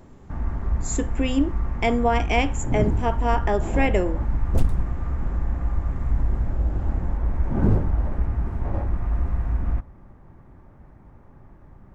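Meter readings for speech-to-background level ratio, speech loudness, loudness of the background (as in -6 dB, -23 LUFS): 2.0 dB, -25.0 LUFS, -27.0 LUFS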